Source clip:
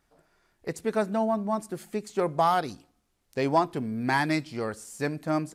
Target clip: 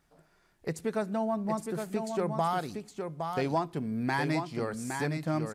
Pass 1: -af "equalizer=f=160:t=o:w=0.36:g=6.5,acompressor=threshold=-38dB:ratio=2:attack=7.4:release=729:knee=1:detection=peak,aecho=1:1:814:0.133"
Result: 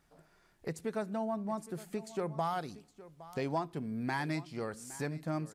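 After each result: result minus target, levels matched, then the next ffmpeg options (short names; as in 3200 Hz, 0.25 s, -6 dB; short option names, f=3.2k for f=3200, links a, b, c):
echo-to-direct -11.5 dB; compressor: peak gain reduction +5 dB
-af "equalizer=f=160:t=o:w=0.36:g=6.5,acompressor=threshold=-38dB:ratio=2:attack=7.4:release=729:knee=1:detection=peak,aecho=1:1:814:0.501"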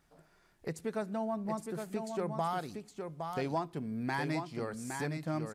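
compressor: peak gain reduction +5 dB
-af "equalizer=f=160:t=o:w=0.36:g=6.5,acompressor=threshold=-28.5dB:ratio=2:attack=7.4:release=729:knee=1:detection=peak,aecho=1:1:814:0.501"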